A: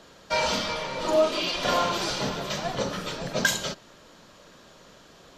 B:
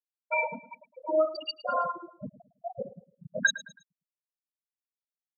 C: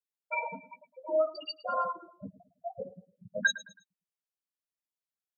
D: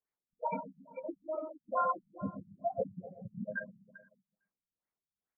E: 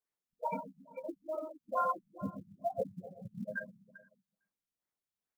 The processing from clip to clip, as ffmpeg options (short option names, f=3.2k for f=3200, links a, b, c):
-af "afftfilt=real='re*gte(hypot(re,im),0.224)':imag='im*gte(hypot(re,im),0.224)':win_size=1024:overlap=0.75,crystalizer=i=6.5:c=0,aecho=1:1:108|216|324:0.141|0.048|0.0163,volume=-4.5dB"
-af "flanger=delay=9.3:depth=2.5:regen=12:speed=0.57:shape=triangular"
-filter_complex "[0:a]acompressor=threshold=-33dB:ratio=6,asplit=2[a][b];[b]aecho=0:1:127|254|381|508|635|762:0.335|0.178|0.0941|0.0499|0.0264|0.014[c];[a][c]amix=inputs=2:normalize=0,afftfilt=real='re*lt(b*sr/1024,210*pow(2500/210,0.5+0.5*sin(2*PI*2.3*pts/sr)))':imag='im*lt(b*sr/1024,210*pow(2500/210,0.5+0.5*sin(2*PI*2.3*pts/sr)))':win_size=1024:overlap=0.75,volume=6dB"
-af "acrusher=bits=9:mode=log:mix=0:aa=0.000001,volume=-1dB"